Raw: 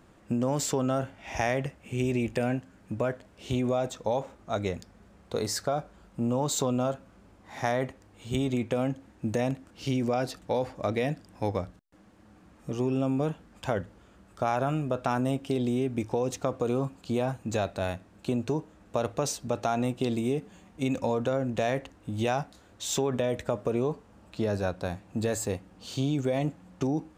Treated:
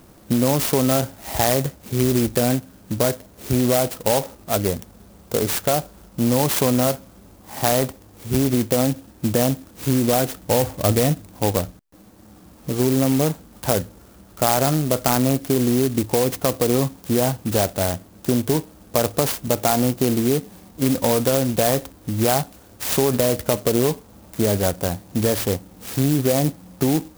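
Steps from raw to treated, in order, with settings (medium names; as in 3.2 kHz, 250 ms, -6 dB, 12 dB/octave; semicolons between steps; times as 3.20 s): 10.47–11.28 s: peaking EQ 84 Hz +8.5 dB 1.3 oct; sampling jitter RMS 0.12 ms; trim +9 dB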